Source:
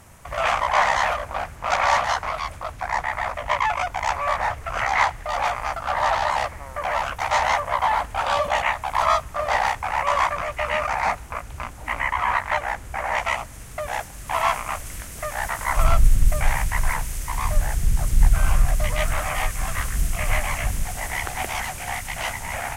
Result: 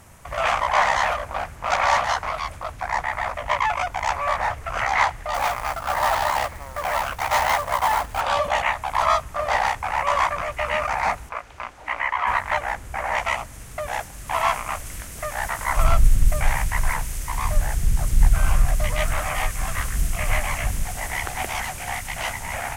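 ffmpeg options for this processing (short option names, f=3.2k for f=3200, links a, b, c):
-filter_complex "[0:a]asettb=1/sr,asplit=3[a][b][c];[a]atrim=end=5.344[d];[b]atrim=start=5.34:end=8.21,asetpts=PTS-STARTPTS,afade=t=in:d=0.004:c=qsin,afade=t=out:st=2.866:d=0.004:c=qsin,acrusher=bits=3:mode=log:mix=0:aa=0.000001[e];[c]atrim=start=8.206[f];[d][e]acrossfade=d=0.004:c1=hsin:c2=qsin[g];[g][f]acrossfade=d=0.004:c1=qsin:c2=hsin,asettb=1/sr,asplit=3[h][i][j];[h]atrim=end=11.294[k];[i]atrim=start=11.29:end=12.27,asetpts=PTS-STARTPTS,afade=t=in:d=0.004:c=qsin,afade=t=out:st=0.976:d=0.004:c=qsin,acrossover=split=340 5700:gain=0.224 1 0.2[l][m][n];[l][m][n]amix=inputs=3:normalize=0[o];[j]atrim=start=12.266[p];[k][o]acrossfade=d=0.004:c1=hsin:c2=qsin[q];[q][p]acrossfade=d=0.004:c1=qsin:c2=hsin"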